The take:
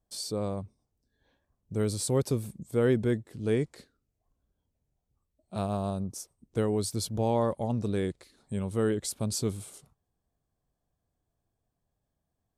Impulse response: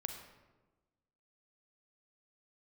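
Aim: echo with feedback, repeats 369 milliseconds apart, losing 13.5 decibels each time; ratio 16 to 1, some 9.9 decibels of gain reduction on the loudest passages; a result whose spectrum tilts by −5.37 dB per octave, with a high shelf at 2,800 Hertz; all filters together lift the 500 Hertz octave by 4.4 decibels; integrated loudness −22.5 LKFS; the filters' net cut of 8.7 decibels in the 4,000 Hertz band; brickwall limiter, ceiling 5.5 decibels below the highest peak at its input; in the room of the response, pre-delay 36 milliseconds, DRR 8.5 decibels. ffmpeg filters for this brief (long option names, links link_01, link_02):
-filter_complex "[0:a]equalizer=frequency=500:width_type=o:gain=5.5,highshelf=frequency=2800:gain=-5.5,equalizer=frequency=4000:width_type=o:gain=-6,acompressor=threshold=-27dB:ratio=16,alimiter=level_in=0.5dB:limit=-24dB:level=0:latency=1,volume=-0.5dB,aecho=1:1:369|738:0.211|0.0444,asplit=2[link_01][link_02];[1:a]atrim=start_sample=2205,adelay=36[link_03];[link_02][link_03]afir=irnorm=-1:irlink=0,volume=-7.5dB[link_04];[link_01][link_04]amix=inputs=2:normalize=0,volume=12.5dB"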